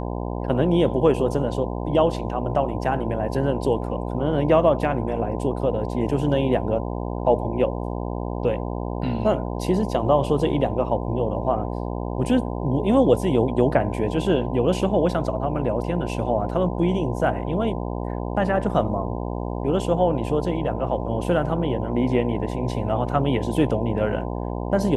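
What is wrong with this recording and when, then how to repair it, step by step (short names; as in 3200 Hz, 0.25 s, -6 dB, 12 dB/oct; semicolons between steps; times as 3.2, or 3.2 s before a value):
buzz 60 Hz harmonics 17 -28 dBFS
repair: de-hum 60 Hz, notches 17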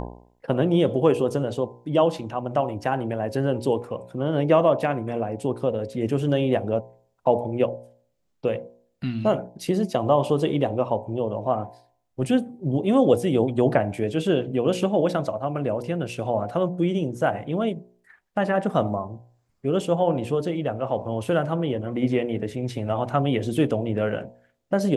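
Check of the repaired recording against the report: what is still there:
none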